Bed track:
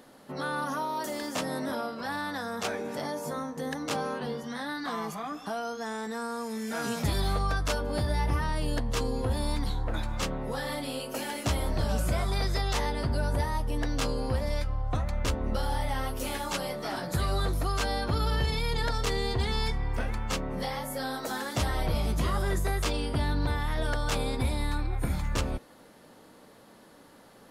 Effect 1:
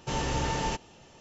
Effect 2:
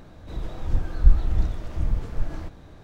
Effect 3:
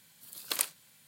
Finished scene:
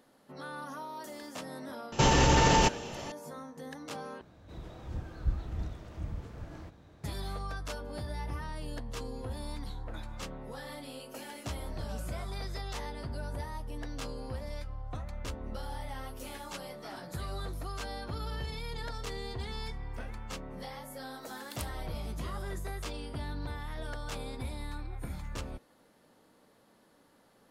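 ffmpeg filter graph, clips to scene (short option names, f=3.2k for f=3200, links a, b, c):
-filter_complex "[0:a]volume=-10dB[a];[1:a]alimiter=level_in=25dB:limit=-1dB:release=50:level=0:latency=1[b];[2:a]highpass=60[c];[a]asplit=2[d][e];[d]atrim=end=4.214[f];[c]atrim=end=2.83,asetpts=PTS-STARTPTS,volume=-8.5dB[g];[e]atrim=start=7.036[h];[b]atrim=end=1.2,asetpts=PTS-STARTPTS,volume=-13dB,afade=t=in:d=0.004:c=hsin,afade=t=out:st=1.196:d=0.004:c=hsin,adelay=1920[i];[3:a]atrim=end=1.07,asetpts=PTS-STARTPTS,volume=-15dB,afade=t=in:d=0.004:c=hsin,afade=t=out:st=1.066:d=0.004:c=hsin,adelay=926100S[j];[f][g]acrossfade=d=0.004:c1=hsin:c2=hsin[k];[k][h]acrossfade=d=0.004:c1=hsin:c2=hsin[l];[l][i][j]amix=inputs=3:normalize=0"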